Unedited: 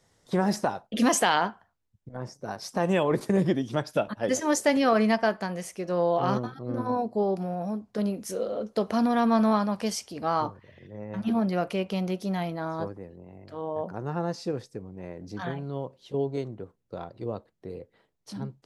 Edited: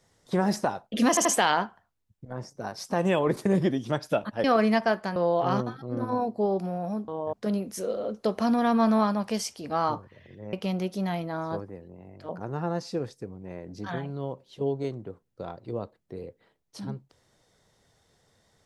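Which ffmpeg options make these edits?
-filter_complex "[0:a]asplit=9[a][b][c][d][e][f][g][h][i];[a]atrim=end=1.172[j];[b]atrim=start=1.088:end=1.172[k];[c]atrim=start=1.088:end=4.282[l];[d]atrim=start=4.808:end=5.532[m];[e]atrim=start=5.928:end=7.852[n];[f]atrim=start=13.568:end=13.822[o];[g]atrim=start=7.848:end=11.052[p];[h]atrim=start=11.808:end=13.572[q];[i]atrim=start=13.818[r];[j][k]acrossfade=d=0.004:c1=hsin:c2=hsin[s];[s][l]acrossfade=d=0.004:c1=hsin:c2=hsin[t];[t][m]acrossfade=d=0.004:c1=hsin:c2=hsin[u];[u][n]acrossfade=d=0.004:c1=hsin:c2=hsin[v];[v][o]acrossfade=d=0.004:c1=hsin:c2=hsin[w];[w][p]acrossfade=d=0.004:c1=hsin:c2=hsin[x];[x][q]acrossfade=d=0.004:c1=hsin:c2=hsin[y];[y][r]acrossfade=d=0.004:c1=hsin:c2=hsin"

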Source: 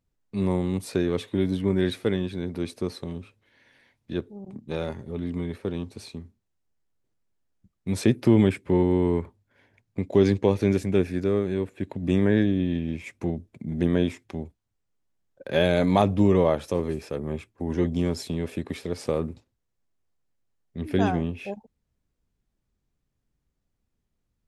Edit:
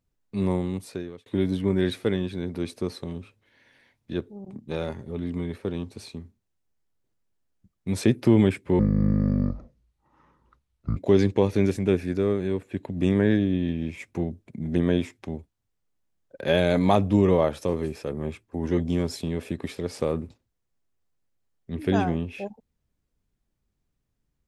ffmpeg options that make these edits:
-filter_complex "[0:a]asplit=4[a][b][c][d];[a]atrim=end=1.26,asetpts=PTS-STARTPTS,afade=t=out:st=0.51:d=0.75[e];[b]atrim=start=1.26:end=8.794,asetpts=PTS-STARTPTS,afade=t=in:d=0.004:c=hsin[f];[c]atrim=start=8.79:end=10.03,asetpts=PTS-STARTPTS,asetrate=25137,aresample=44100[g];[d]atrim=start=10.026[h];[e][f]concat=n=2:v=0:a=1[i];[i][g]acrossfade=d=0.004:c1=hsin:c2=hsin[j];[j][h]acrossfade=d=0.004:c1=hsin:c2=hsin"

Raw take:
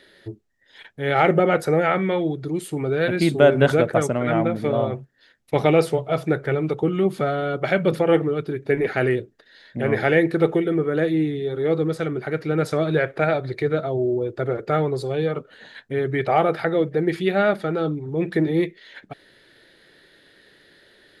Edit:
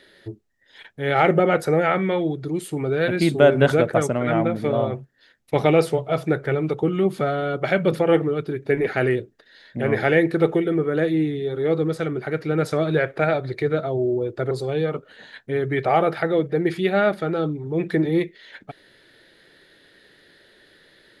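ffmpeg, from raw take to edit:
-filter_complex "[0:a]asplit=2[a][b];[a]atrim=end=14.512[c];[b]atrim=start=14.928[d];[c][d]acrossfade=d=0.004:c1=hsin:c2=hsin"

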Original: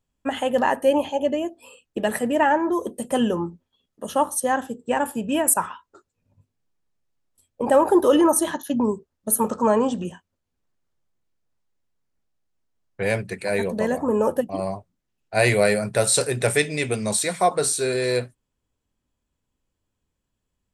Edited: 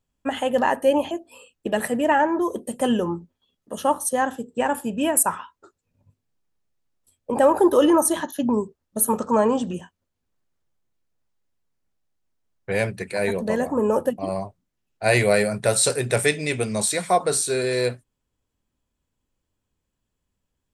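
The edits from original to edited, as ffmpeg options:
-filter_complex "[0:a]asplit=2[a][b];[a]atrim=end=1.112[c];[b]atrim=start=1.418[d];[c][d]acrossfade=d=0.004:c1=hsin:c2=hsin"

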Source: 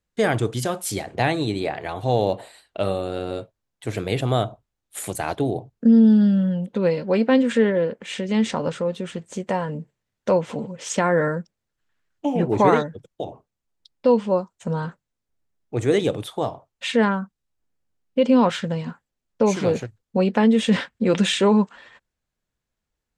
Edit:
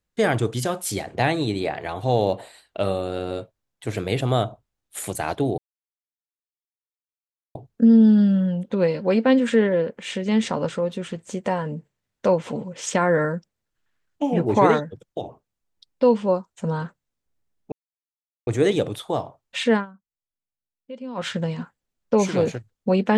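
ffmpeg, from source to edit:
-filter_complex "[0:a]asplit=5[a][b][c][d][e];[a]atrim=end=5.58,asetpts=PTS-STARTPTS,afade=t=out:st=5.576:d=0.004:c=hsin,apad=pad_dur=1.97[f];[b]atrim=start=5.58:end=15.75,asetpts=PTS-STARTPTS,afade=t=in:d=0.004:c=hsin,afade=t=out:st=10.166:d=0.004:c=hsin,apad=pad_dur=0.75[g];[c]atrim=start=15.75:end=17.14,asetpts=PTS-STARTPTS,afade=t=in:d=0.004:c=hsin,afade=t=out:st=1.26:d=0.13:silence=0.11885[h];[d]atrim=start=17.14:end=18.43,asetpts=PTS-STARTPTS,volume=-18.5dB[i];[e]atrim=start=18.43,asetpts=PTS-STARTPTS,afade=t=in:d=0.13:silence=0.11885[j];[f][g][h][i][j]concat=n=5:v=0:a=1"

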